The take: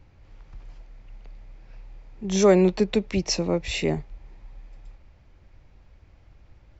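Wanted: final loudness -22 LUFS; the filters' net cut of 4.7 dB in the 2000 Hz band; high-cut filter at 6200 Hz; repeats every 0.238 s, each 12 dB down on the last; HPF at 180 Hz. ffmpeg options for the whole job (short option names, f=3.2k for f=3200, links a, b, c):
-af "highpass=180,lowpass=6.2k,equalizer=f=2k:t=o:g=-6,aecho=1:1:238|476|714:0.251|0.0628|0.0157,volume=2dB"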